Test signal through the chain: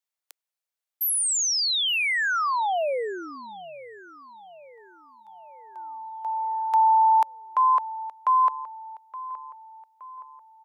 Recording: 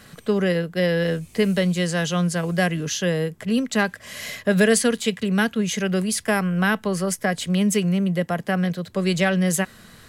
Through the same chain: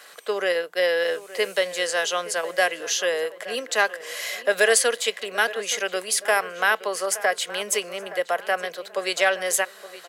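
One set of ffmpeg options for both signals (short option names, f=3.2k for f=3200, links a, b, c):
-filter_complex "[0:a]highpass=f=480:w=0.5412,highpass=f=480:w=1.3066,asplit=2[a][b];[b]adelay=870,lowpass=f=2.5k:p=1,volume=-15.5dB,asplit=2[c][d];[d]adelay=870,lowpass=f=2.5k:p=1,volume=0.5,asplit=2[e][f];[f]adelay=870,lowpass=f=2.5k:p=1,volume=0.5,asplit=2[g][h];[h]adelay=870,lowpass=f=2.5k:p=1,volume=0.5,asplit=2[i][j];[j]adelay=870,lowpass=f=2.5k:p=1,volume=0.5[k];[c][e][g][i][k]amix=inputs=5:normalize=0[l];[a][l]amix=inputs=2:normalize=0,volume=2.5dB"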